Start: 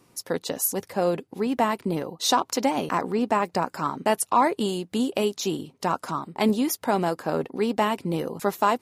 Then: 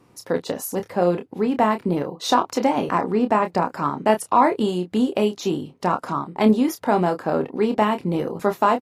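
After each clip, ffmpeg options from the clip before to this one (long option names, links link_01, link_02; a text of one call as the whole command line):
ffmpeg -i in.wav -filter_complex "[0:a]highshelf=frequency=3600:gain=-12,asplit=2[link_01][link_02];[link_02]adelay=28,volume=-8dB[link_03];[link_01][link_03]amix=inputs=2:normalize=0,volume=4dB" out.wav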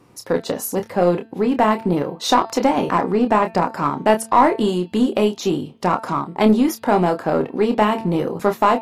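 ffmpeg -i in.wav -filter_complex "[0:a]bandreject=frequency=224:width_type=h:width=4,bandreject=frequency=448:width_type=h:width=4,bandreject=frequency=672:width_type=h:width=4,bandreject=frequency=896:width_type=h:width=4,bandreject=frequency=1120:width_type=h:width=4,bandreject=frequency=1344:width_type=h:width=4,bandreject=frequency=1568:width_type=h:width=4,bandreject=frequency=1792:width_type=h:width=4,bandreject=frequency=2016:width_type=h:width=4,bandreject=frequency=2240:width_type=h:width=4,bandreject=frequency=2464:width_type=h:width=4,bandreject=frequency=2688:width_type=h:width=4,bandreject=frequency=2912:width_type=h:width=4,bandreject=frequency=3136:width_type=h:width=4,bandreject=frequency=3360:width_type=h:width=4,bandreject=frequency=3584:width_type=h:width=4,bandreject=frequency=3808:width_type=h:width=4,bandreject=frequency=4032:width_type=h:width=4,bandreject=frequency=4256:width_type=h:width=4,bandreject=frequency=4480:width_type=h:width=4,bandreject=frequency=4704:width_type=h:width=4,bandreject=frequency=4928:width_type=h:width=4,asplit=2[link_01][link_02];[link_02]aeval=exprs='clip(val(0),-1,0.1)':channel_layout=same,volume=-5.5dB[link_03];[link_01][link_03]amix=inputs=2:normalize=0" out.wav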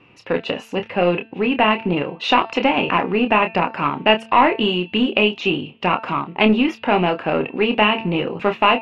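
ffmpeg -i in.wav -af "lowpass=frequency=2700:width_type=q:width=10,volume=-1.5dB" out.wav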